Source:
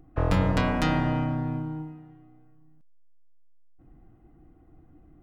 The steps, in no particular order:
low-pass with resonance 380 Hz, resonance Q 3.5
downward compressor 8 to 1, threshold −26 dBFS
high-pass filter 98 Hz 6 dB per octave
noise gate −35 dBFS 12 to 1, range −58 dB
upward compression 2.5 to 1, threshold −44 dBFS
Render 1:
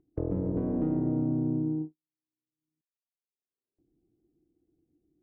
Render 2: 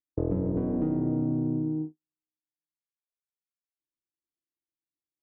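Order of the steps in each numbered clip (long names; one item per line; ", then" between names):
downward compressor, then high-pass filter, then noise gate, then low-pass with resonance, then upward compression
upward compression, then noise gate, then high-pass filter, then downward compressor, then low-pass with resonance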